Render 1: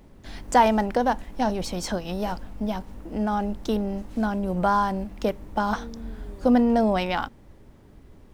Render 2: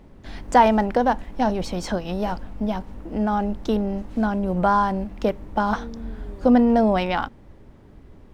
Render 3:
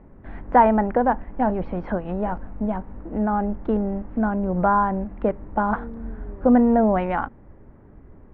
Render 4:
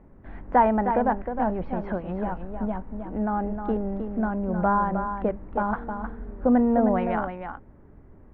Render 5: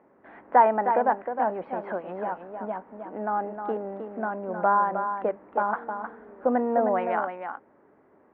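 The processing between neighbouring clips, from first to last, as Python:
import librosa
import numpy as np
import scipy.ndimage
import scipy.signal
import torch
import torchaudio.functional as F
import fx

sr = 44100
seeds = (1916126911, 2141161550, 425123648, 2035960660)

y1 = fx.high_shelf(x, sr, hz=5500.0, db=-10.5)
y1 = y1 * 10.0 ** (3.0 / 20.0)
y2 = scipy.signal.sosfilt(scipy.signal.butter(4, 1900.0, 'lowpass', fs=sr, output='sos'), y1)
y3 = y2 + 10.0 ** (-7.5 / 20.0) * np.pad(y2, (int(311 * sr / 1000.0), 0))[:len(y2)]
y3 = y3 * 10.0 ** (-4.0 / 20.0)
y4 = fx.bandpass_edges(y3, sr, low_hz=430.0, high_hz=2600.0)
y4 = y4 * 10.0 ** (2.0 / 20.0)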